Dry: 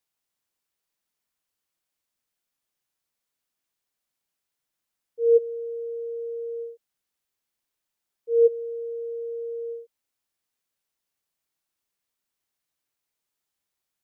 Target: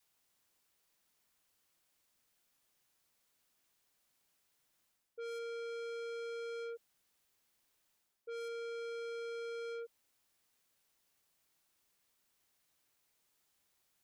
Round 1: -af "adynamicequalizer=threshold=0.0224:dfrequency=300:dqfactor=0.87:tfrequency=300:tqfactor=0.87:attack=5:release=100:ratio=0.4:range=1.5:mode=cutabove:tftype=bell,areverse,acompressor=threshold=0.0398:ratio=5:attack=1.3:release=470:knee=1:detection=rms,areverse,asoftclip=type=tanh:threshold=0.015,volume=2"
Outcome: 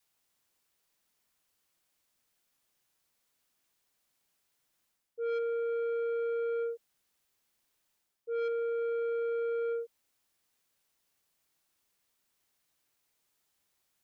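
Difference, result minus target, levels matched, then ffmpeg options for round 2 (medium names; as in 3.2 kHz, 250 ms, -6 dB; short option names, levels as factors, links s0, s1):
saturation: distortion -5 dB
-af "adynamicequalizer=threshold=0.0224:dfrequency=300:dqfactor=0.87:tfrequency=300:tqfactor=0.87:attack=5:release=100:ratio=0.4:range=1.5:mode=cutabove:tftype=bell,areverse,acompressor=threshold=0.0398:ratio=5:attack=1.3:release=470:knee=1:detection=rms,areverse,asoftclip=type=tanh:threshold=0.00398,volume=2"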